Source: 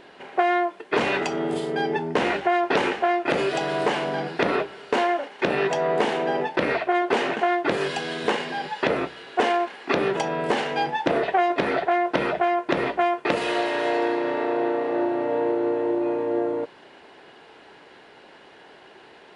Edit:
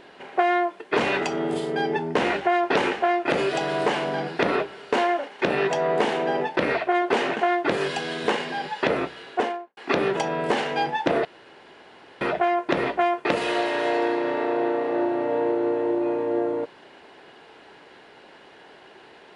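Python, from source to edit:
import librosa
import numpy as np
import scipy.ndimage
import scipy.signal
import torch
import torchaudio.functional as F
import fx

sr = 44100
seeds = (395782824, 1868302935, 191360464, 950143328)

y = fx.studio_fade_out(x, sr, start_s=9.25, length_s=0.52)
y = fx.edit(y, sr, fx.room_tone_fill(start_s=11.25, length_s=0.96), tone=tone)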